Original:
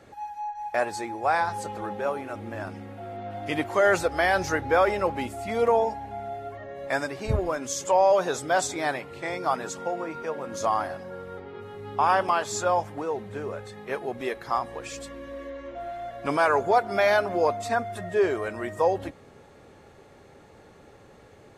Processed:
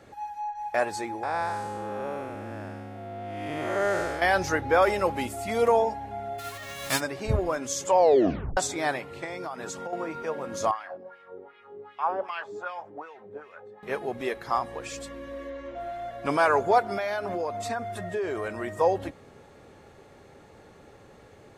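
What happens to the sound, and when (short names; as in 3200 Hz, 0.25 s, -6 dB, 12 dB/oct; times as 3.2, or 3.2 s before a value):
1.23–4.22 time blur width 0.297 s
4.82–5.82 high shelf 5300 Hz +8 dB
6.38–6.99 spectral whitening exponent 0.3
7.97 tape stop 0.60 s
9.24–9.93 compressor 8:1, threshold -31 dBFS
10.71–13.83 wah 2.6 Hz 350–2600 Hz, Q 2.2
16.93–18.81 compressor, threshold -26 dBFS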